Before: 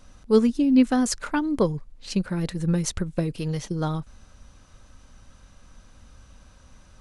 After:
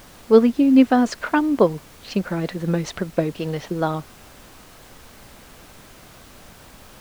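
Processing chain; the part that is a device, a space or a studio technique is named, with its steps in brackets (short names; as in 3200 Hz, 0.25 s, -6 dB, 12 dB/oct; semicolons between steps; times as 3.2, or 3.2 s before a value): horn gramophone (BPF 240–3100 Hz; bell 680 Hz +6 dB 0.26 oct; wow and flutter; pink noise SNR 24 dB); gain +6.5 dB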